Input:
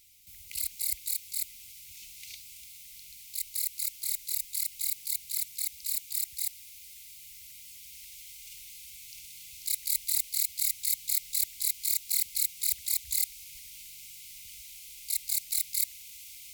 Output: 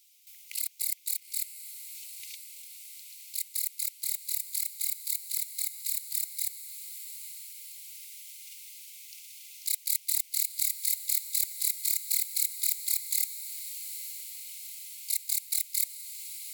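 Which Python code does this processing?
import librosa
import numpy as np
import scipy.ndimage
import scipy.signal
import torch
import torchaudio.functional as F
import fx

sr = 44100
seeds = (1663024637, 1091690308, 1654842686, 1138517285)

y = fx.filter_sweep_highpass(x, sr, from_hz=2900.0, to_hz=300.0, start_s=0.04, end_s=1.21, q=0.86)
y = fx.transient(y, sr, attack_db=4, sustain_db=-9)
y = fx.echo_diffused(y, sr, ms=868, feedback_pct=61, wet_db=-11)
y = y * 10.0 ** (-2.0 / 20.0)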